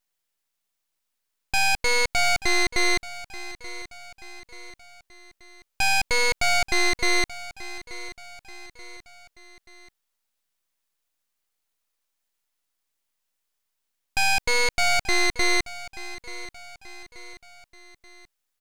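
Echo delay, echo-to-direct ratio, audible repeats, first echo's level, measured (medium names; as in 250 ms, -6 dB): 882 ms, -15.0 dB, 3, -16.0 dB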